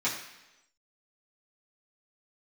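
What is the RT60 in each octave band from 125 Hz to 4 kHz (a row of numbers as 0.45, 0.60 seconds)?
0.85, 0.95, 1.0, 0.95, 1.0, 1.0 seconds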